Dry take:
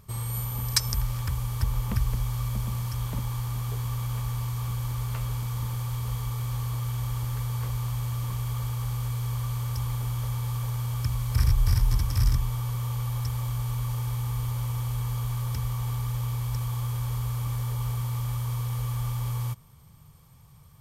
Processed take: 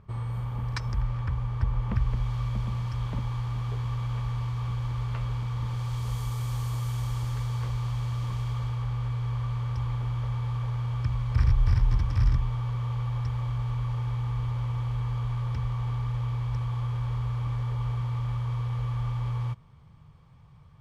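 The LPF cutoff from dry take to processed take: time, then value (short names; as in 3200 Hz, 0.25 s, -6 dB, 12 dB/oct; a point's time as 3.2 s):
1.76 s 2000 Hz
2.32 s 3400 Hz
5.6 s 3400 Hz
6.19 s 8800 Hz
6.89 s 8800 Hz
7.77 s 4700 Hz
8.41 s 4700 Hz
8.88 s 2800 Hz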